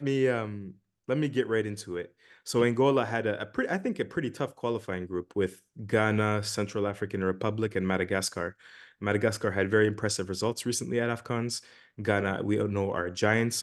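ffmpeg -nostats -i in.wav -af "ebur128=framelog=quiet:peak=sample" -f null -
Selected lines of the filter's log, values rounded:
Integrated loudness:
  I:         -29.3 LUFS
  Threshold: -39.6 LUFS
Loudness range:
  LRA:         1.4 LU
  Threshold: -49.6 LUFS
  LRA low:   -30.4 LUFS
  LRA high:  -29.0 LUFS
Sample peak:
  Peak:       -9.1 dBFS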